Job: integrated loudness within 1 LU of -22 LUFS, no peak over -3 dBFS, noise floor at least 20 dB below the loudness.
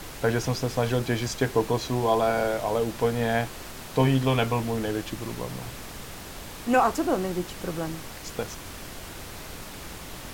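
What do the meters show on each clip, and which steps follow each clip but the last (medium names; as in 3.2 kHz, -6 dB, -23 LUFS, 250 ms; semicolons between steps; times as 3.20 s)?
noise floor -41 dBFS; noise floor target -47 dBFS; loudness -26.5 LUFS; peak level -8.0 dBFS; loudness target -22.0 LUFS
-> noise print and reduce 6 dB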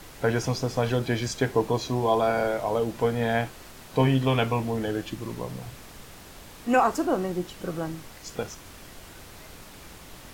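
noise floor -46 dBFS; noise floor target -47 dBFS
-> noise print and reduce 6 dB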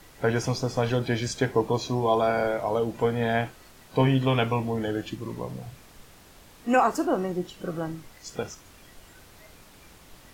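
noise floor -52 dBFS; loudness -26.5 LUFS; peak level -8.5 dBFS; loudness target -22.0 LUFS
-> trim +4.5 dB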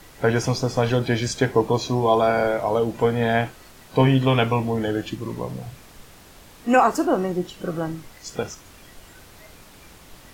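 loudness -22.0 LUFS; peak level -4.0 dBFS; noise floor -48 dBFS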